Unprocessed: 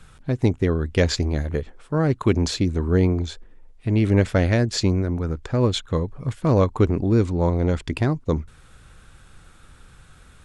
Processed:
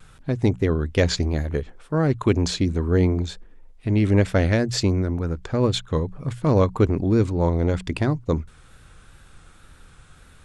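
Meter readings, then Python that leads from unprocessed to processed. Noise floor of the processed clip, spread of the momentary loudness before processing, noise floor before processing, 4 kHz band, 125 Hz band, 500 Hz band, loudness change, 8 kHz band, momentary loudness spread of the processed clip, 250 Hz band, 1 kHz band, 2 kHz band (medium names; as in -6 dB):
-50 dBFS, 8 LU, -50 dBFS, 0.0 dB, -0.5 dB, 0.0 dB, -0.5 dB, 0.0 dB, 8 LU, 0.0 dB, 0.0 dB, 0.0 dB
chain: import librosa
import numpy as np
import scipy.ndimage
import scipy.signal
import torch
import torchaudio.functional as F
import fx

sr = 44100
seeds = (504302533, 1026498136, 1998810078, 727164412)

y = fx.hum_notches(x, sr, base_hz=60, count=3)
y = fx.wow_flutter(y, sr, seeds[0], rate_hz=2.1, depth_cents=48.0)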